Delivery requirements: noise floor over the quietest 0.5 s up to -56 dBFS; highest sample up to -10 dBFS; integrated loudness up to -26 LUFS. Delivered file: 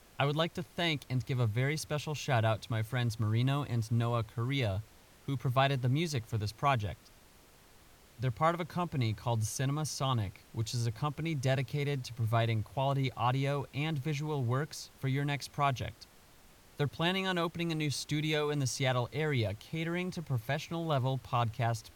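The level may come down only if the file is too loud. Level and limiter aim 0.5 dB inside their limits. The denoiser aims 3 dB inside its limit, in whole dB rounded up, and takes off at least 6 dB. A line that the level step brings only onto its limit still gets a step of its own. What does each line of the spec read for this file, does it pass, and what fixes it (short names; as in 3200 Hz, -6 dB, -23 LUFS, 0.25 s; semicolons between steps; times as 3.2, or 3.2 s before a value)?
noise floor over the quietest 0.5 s -60 dBFS: OK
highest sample -15.5 dBFS: OK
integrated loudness -33.5 LUFS: OK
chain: none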